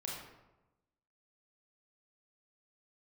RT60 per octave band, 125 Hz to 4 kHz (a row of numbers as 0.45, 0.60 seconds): 1.2, 1.1, 1.0, 1.0, 0.75, 0.60 seconds